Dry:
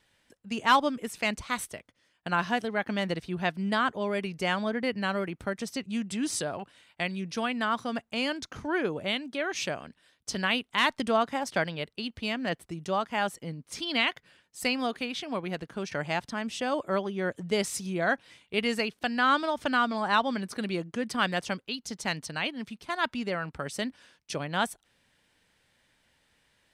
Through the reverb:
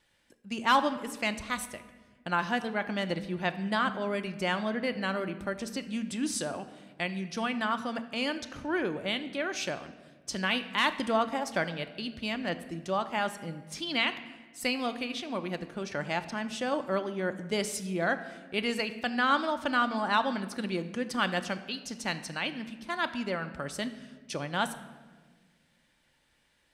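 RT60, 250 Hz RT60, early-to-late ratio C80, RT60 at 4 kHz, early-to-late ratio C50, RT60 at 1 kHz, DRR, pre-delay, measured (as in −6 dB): 1.4 s, 2.1 s, 14.5 dB, 0.95 s, 12.5 dB, 1.2 s, 9.0 dB, 3 ms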